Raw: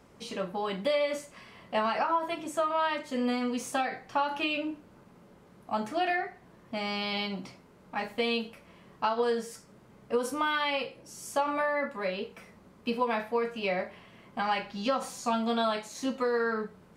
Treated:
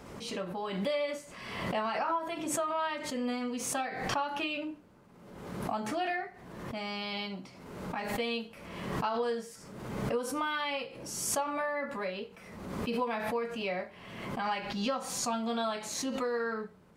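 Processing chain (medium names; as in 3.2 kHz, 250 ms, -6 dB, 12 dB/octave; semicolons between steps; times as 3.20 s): swell ahead of each attack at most 43 dB/s; trim -4.5 dB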